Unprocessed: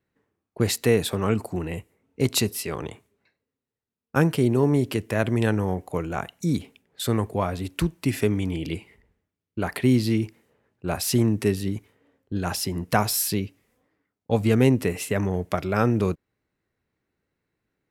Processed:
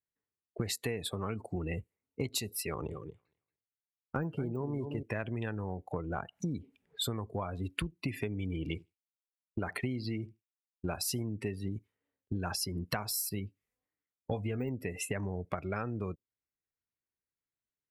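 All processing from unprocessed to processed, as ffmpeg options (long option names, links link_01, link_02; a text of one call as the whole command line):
ffmpeg -i in.wav -filter_complex "[0:a]asettb=1/sr,asplit=3[link_01][link_02][link_03];[link_01]atrim=end=2.674[link_04];[link_02]atrim=start=2.67:end=5.03,asetpts=PTS-STARTPTS,afade=type=in:duration=0.004:curve=qsin,afade=type=out:start_time=2.356:duration=0.004:curve=qsin,deesser=0.95,asplit=2[link_05][link_06];[link_06]adelay=230,lowpass=frequency=3700:poles=1,volume=-9.5dB,asplit=2[link_07][link_08];[link_08]adelay=230,lowpass=frequency=3700:poles=1,volume=0.18,asplit=2[link_09][link_10];[link_10]adelay=230,lowpass=frequency=3700:poles=1,volume=0.18[link_11];[link_05][link_07][link_09][link_11]amix=inputs=4:normalize=0,atrim=end_sample=104076[link_12];[link_03]atrim=start=5.026[link_13];[link_04][link_12]acrossfade=duration=0.004:curve1=hsin:curve2=qsin[link_14];[link_14][link_13]acrossfade=duration=0.004:curve1=qsin:curve2=hsin,asettb=1/sr,asplit=3[link_15][link_16][link_17];[link_15]atrim=end=5.914[link_18];[link_16]atrim=start=5.91:end=7.02,asetpts=PTS-STARTPTS,afade=type=in:duration=0.004:curve=qsin,afade=type=out:start_time=1.106:duration=0.004:curve=qsin,highshelf=frequency=2900:gain=-8,acompressor=mode=upward:threshold=-35dB:ratio=2.5:attack=3.2:release=140:knee=2.83:detection=peak[link_19];[link_17]atrim=start=7.016[link_20];[link_18][link_19]acrossfade=duration=0.004:curve1=hsin:curve2=qsin[link_21];[link_21][link_20]acrossfade=duration=0.004:curve1=qsin:curve2=hsin,asettb=1/sr,asplit=3[link_22][link_23][link_24];[link_22]atrim=end=8.644[link_25];[link_23]atrim=start=8.64:end=11.23,asetpts=PTS-STARTPTS,afade=type=in:duration=0.004:curve=qsin,afade=type=out:start_time=2.586:duration=0.004:curve=qsin,aeval=exprs='sgn(val(0))*max(abs(val(0))-0.00473,0)':channel_layout=same,aecho=1:1:75|150:0.112|0.0258,atrim=end_sample=114219[link_26];[link_24]atrim=start=11.226[link_27];[link_25][link_26]acrossfade=duration=0.004:curve1=hsin:curve2=qsin[link_28];[link_28][link_27]acrossfade=duration=0.004:curve1=qsin:curve2=hsin,asettb=1/sr,asplit=3[link_29][link_30][link_31];[link_29]atrim=end=13.294[link_32];[link_30]atrim=start=13.29:end=14.69,asetpts=PTS-STARTPTS,afade=type=in:duration=0.004:curve=qsin,afade=type=out:start_time=1.396:duration=0.004:curve=qsin,deesser=0.8,asplit=2[link_33][link_34];[link_34]adelay=20,volume=-11dB[link_35];[link_33][link_35]amix=inputs=2:normalize=0,atrim=end_sample=61740[link_36];[link_31]atrim=start=14.686[link_37];[link_32][link_36]acrossfade=duration=0.004:curve1=hsin:curve2=qsin[link_38];[link_38][link_37]acrossfade=duration=0.004:curve1=qsin:curve2=hsin,afftdn=noise_reduction=25:noise_floor=-34,equalizer=frequency=280:width=0.3:gain=-7,acompressor=threshold=-38dB:ratio=12,volume=6.5dB" out.wav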